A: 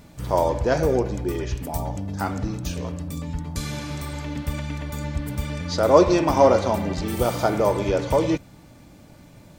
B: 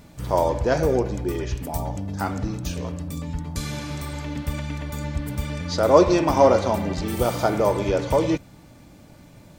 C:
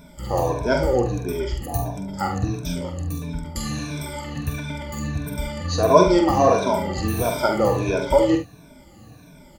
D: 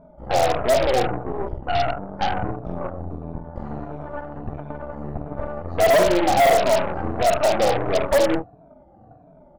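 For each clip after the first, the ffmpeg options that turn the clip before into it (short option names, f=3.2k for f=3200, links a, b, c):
-af anull
-filter_complex "[0:a]afftfilt=real='re*pow(10,19/40*sin(2*PI*(1.6*log(max(b,1)*sr/1024/100)/log(2)-(-1.5)*(pts-256)/sr)))':imag='im*pow(10,19/40*sin(2*PI*(1.6*log(max(b,1)*sr/1024/100)/log(2)-(-1.5)*(pts-256)/sr)))':win_size=1024:overlap=0.75,asplit=2[a][b];[b]aecho=0:1:46|73:0.447|0.251[c];[a][c]amix=inputs=2:normalize=0,volume=-3dB"
-af "lowpass=f=710:t=q:w=7.1,aeval=exprs='0.501*(cos(1*acos(clip(val(0)/0.501,-1,1)))-cos(1*PI/2))+0.1*(cos(8*acos(clip(val(0)/0.501,-1,1)))-cos(8*PI/2))':c=same,volume=-6.5dB"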